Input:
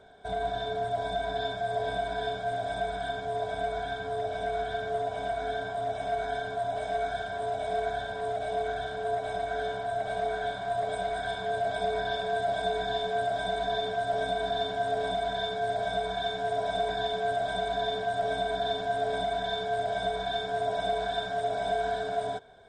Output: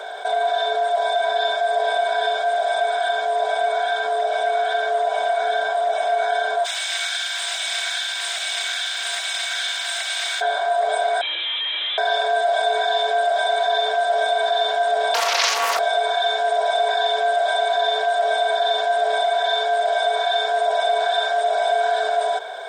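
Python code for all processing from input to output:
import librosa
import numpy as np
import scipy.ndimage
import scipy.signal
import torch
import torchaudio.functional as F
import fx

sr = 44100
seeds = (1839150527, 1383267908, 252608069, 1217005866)

y = fx.spec_flatten(x, sr, power=0.7, at=(6.64, 10.4), fade=0.02)
y = fx.cheby1_highpass(y, sr, hz=2600.0, order=2, at=(6.64, 10.4), fade=0.02)
y = fx.chain(y, sr, fx.law_mismatch(coded='A'),
    fx.tube_stage(drive_db=40.0, bias=0.4),
    fx.freq_invert(carrier_hz=3900), at=(11.21, 11.98))
y = fx.chain(y, sr, fx.steep_highpass(hz=200.0, slope=96),
    fx.tilt_eq(slope=4.0),
    fx.doppler_dist(depth_ms=0.64), at=(15.14, 15.79))
y = scipy.signal.sosfilt(scipy.signal.butter(4, 540.0, 'highpass', fs=sr, output='sos'), y)
y = fx.env_flatten(y, sr, amount_pct=50)
y = y * 10.0 ** (9.0 / 20.0)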